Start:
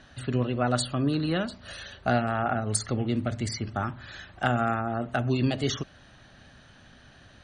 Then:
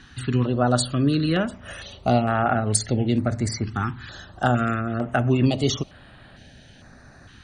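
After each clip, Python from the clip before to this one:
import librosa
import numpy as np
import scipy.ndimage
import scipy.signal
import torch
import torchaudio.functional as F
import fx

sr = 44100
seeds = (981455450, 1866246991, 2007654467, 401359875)

y = fx.filter_held_notch(x, sr, hz=2.2, low_hz=610.0, high_hz=6000.0)
y = F.gain(torch.from_numpy(y), 6.0).numpy()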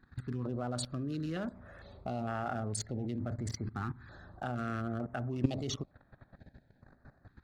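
y = fx.wiener(x, sr, points=15)
y = fx.level_steps(y, sr, step_db=16)
y = F.gain(torch.from_numpy(y), -4.0).numpy()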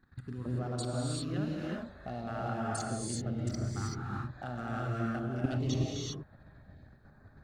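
y = fx.rev_gated(x, sr, seeds[0], gate_ms=410, shape='rising', drr_db=-4.0)
y = F.gain(torch.from_numpy(y), -3.5).numpy()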